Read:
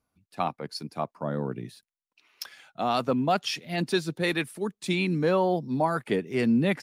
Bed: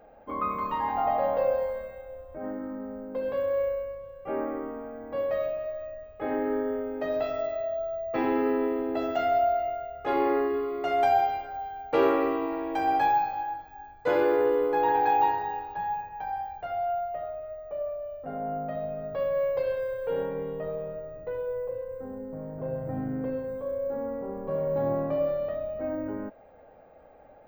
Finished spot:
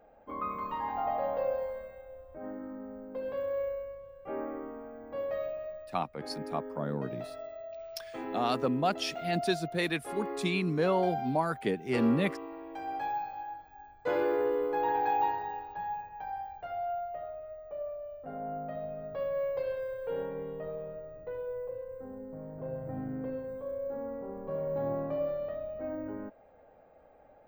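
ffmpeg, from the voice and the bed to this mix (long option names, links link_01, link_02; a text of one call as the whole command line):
ffmpeg -i stem1.wav -i stem2.wav -filter_complex "[0:a]adelay=5550,volume=-4dB[link_01];[1:a]volume=1dB,afade=type=out:start_time=5.65:duration=0.32:silence=0.473151,afade=type=in:start_time=12.88:duration=1.12:silence=0.446684[link_02];[link_01][link_02]amix=inputs=2:normalize=0" out.wav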